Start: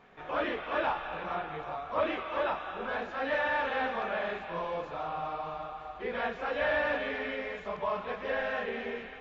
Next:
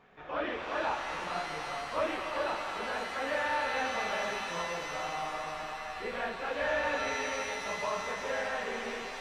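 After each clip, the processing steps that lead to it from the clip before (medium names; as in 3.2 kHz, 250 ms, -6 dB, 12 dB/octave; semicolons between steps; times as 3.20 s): pitch-shifted reverb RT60 3.5 s, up +7 st, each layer -2 dB, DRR 6 dB; trim -3 dB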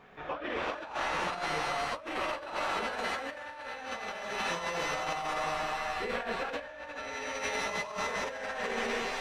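compressor with a negative ratio -37 dBFS, ratio -0.5; trim +2.5 dB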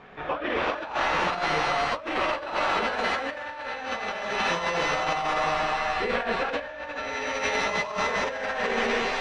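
low-pass 5.3 kHz 12 dB/octave; trim +7.5 dB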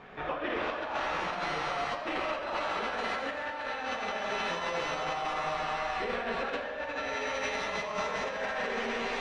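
compression, threshold -29 dBFS, peak gain reduction 8 dB; algorithmic reverb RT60 1.6 s, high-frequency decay 0.8×, pre-delay 15 ms, DRR 5.5 dB; trim -1.5 dB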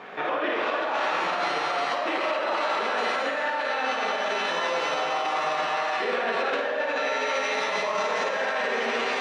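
high-pass 280 Hz 12 dB/octave; peak limiter -27 dBFS, peak gain reduction 6.5 dB; on a send: flutter echo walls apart 9.2 m, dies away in 0.38 s; on the sum: trim +9 dB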